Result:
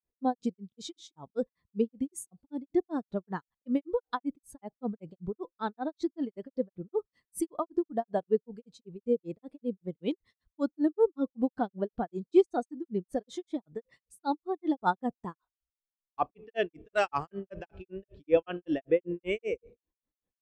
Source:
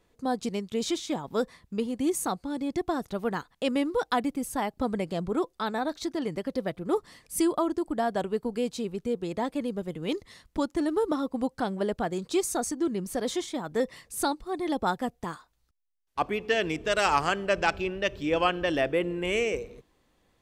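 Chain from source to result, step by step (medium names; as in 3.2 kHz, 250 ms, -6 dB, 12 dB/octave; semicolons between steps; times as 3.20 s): granulator 161 ms, grains 5.2 per s, spray 17 ms, pitch spread up and down by 0 st; spectral contrast expander 1.5:1; trim +2 dB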